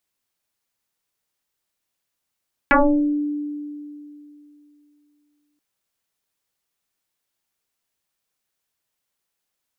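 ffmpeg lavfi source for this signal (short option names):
-f lavfi -i "aevalsrc='0.316*pow(10,-3*t/2.91)*sin(2*PI*294*t+7.4*pow(10,-3*t/0.55)*sin(2*PI*0.96*294*t))':d=2.88:s=44100"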